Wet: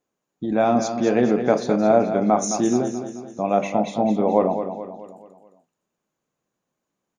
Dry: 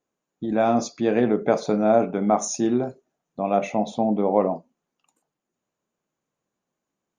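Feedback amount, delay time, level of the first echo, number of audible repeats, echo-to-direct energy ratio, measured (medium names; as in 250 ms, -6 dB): 47%, 215 ms, -9.0 dB, 4, -8.0 dB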